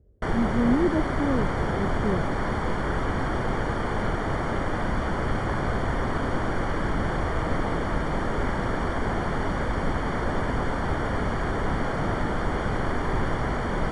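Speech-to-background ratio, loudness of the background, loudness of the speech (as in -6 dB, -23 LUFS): -0.5 dB, -27.5 LUFS, -28.0 LUFS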